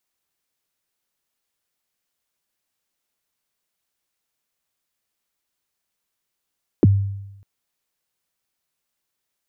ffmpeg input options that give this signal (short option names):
-f lavfi -i "aevalsrc='0.422*pow(10,-3*t/0.93)*sin(2*PI*(440*0.027/log(99/440)*(exp(log(99/440)*min(t,0.027)/0.027)-1)+99*max(t-0.027,0)))':d=0.6:s=44100"